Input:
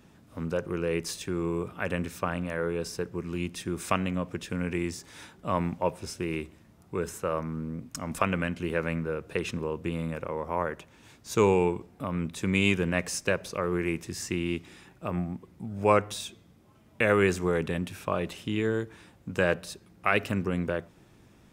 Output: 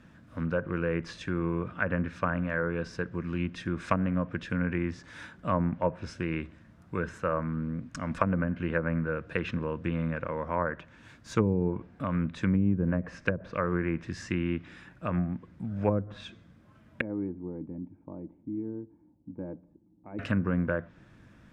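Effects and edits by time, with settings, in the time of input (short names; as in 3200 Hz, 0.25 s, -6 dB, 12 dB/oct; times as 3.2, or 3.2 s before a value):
17.01–20.19 vocal tract filter u
whole clip: thirty-one-band EQ 400 Hz -10 dB, 800 Hz -7 dB, 1600 Hz +8 dB; treble ducked by the level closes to 340 Hz, closed at -21 dBFS; LPF 2300 Hz 6 dB/oct; gain +2.5 dB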